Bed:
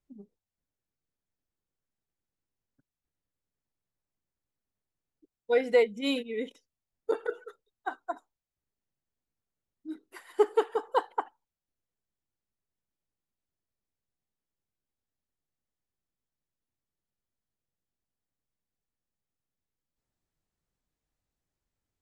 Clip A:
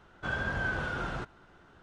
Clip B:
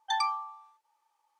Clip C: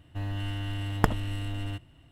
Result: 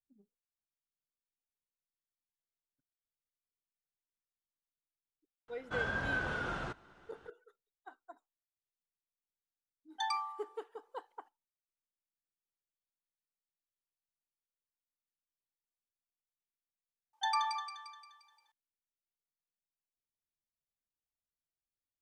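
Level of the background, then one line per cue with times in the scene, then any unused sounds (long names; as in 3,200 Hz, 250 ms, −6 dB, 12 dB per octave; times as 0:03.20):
bed −18.5 dB
0:05.48: mix in A −2.5 dB + low-shelf EQ 180 Hz −5 dB
0:09.90: mix in B −6.5 dB
0:17.13: overwrite with B −4.5 dB + echo with a time of its own for lows and highs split 1,500 Hz, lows 110 ms, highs 175 ms, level −5 dB
not used: C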